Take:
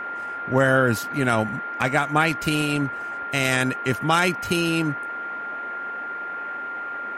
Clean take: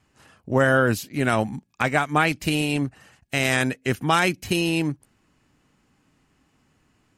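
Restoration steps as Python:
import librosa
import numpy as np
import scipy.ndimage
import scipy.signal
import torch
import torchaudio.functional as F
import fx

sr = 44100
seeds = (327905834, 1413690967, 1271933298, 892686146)

y = fx.fix_declip(x, sr, threshold_db=-8.0)
y = fx.notch(y, sr, hz=1400.0, q=30.0)
y = fx.noise_reduce(y, sr, print_start_s=6.13, print_end_s=6.63, reduce_db=30.0)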